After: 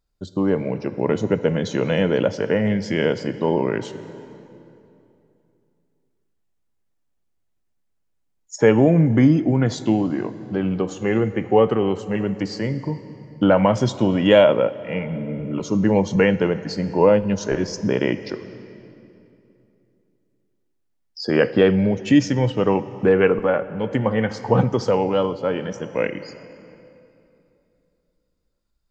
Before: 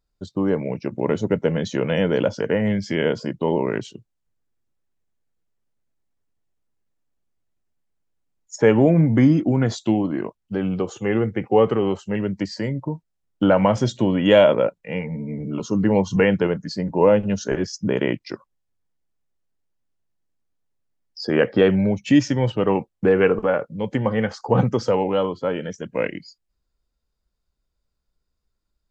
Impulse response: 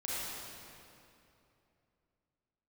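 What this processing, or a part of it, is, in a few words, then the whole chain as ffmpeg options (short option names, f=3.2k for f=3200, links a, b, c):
compressed reverb return: -filter_complex "[0:a]asplit=2[a][b];[1:a]atrim=start_sample=2205[c];[b][c]afir=irnorm=-1:irlink=0,acompressor=threshold=-16dB:ratio=6,volume=-13.5dB[d];[a][d]amix=inputs=2:normalize=0"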